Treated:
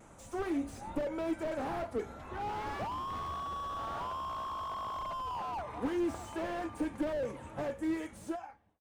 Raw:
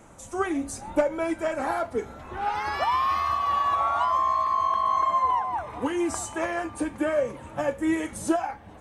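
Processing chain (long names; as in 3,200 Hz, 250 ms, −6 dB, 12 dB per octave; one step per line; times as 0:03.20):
fade-out on the ending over 1.38 s
pitch vibrato 0.51 Hz 15 cents
slew-rate limiting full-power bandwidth 25 Hz
level −5 dB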